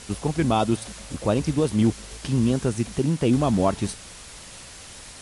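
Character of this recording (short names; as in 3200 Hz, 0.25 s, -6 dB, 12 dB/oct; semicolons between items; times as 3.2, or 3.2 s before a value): a quantiser's noise floor 6-bit, dither triangular; MP3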